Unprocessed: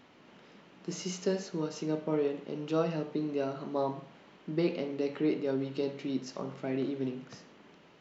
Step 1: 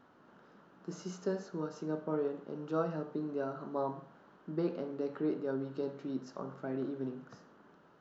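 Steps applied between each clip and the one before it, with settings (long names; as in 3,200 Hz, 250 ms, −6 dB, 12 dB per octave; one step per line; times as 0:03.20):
high shelf with overshoot 1,800 Hz −6.5 dB, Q 3
level −4.5 dB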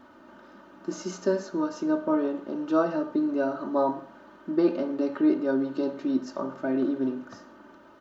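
comb filter 3.3 ms, depth 80%
level +8 dB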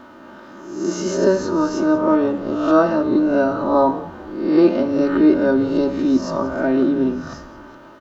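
peak hold with a rise ahead of every peak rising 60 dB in 0.74 s
echo with shifted repeats 183 ms, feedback 43%, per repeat −98 Hz, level −18 dB
level +8 dB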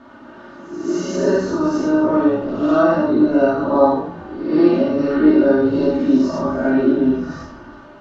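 high-frequency loss of the air 65 metres
convolution reverb, pre-delay 3 ms, DRR −6.5 dB
level −6 dB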